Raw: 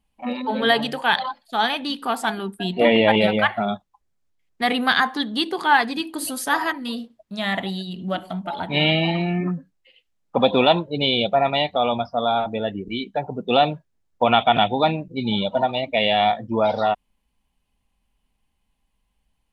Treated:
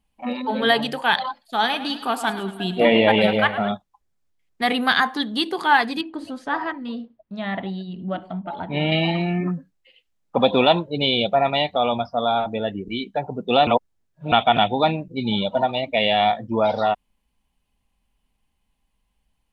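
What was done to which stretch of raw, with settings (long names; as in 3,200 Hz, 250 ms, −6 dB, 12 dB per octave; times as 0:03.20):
0:01.40–0:03.72: feedback echo with a swinging delay time 106 ms, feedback 56%, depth 64 cents, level −13.5 dB
0:06.01–0:08.92: head-to-tape spacing loss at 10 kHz 30 dB
0:13.67–0:14.32: reverse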